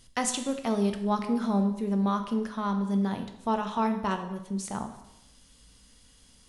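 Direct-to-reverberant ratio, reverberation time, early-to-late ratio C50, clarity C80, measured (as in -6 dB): 6.0 dB, 0.85 s, 9.5 dB, 12.0 dB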